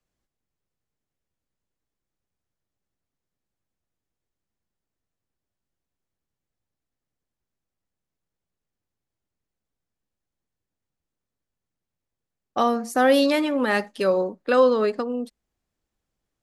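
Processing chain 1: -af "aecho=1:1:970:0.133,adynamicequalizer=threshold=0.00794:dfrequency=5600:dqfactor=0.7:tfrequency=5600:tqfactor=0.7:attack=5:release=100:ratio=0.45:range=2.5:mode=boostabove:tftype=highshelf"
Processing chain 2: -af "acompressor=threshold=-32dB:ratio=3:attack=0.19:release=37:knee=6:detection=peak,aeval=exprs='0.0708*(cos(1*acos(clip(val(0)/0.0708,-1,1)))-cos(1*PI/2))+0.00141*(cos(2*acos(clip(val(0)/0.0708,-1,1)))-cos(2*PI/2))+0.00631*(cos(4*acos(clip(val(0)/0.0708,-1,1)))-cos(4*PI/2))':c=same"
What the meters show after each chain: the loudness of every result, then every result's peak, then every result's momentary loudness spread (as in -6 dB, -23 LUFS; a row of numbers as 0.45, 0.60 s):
-21.5, -33.5 LUFS; -7.5, -23.0 dBFS; 18, 6 LU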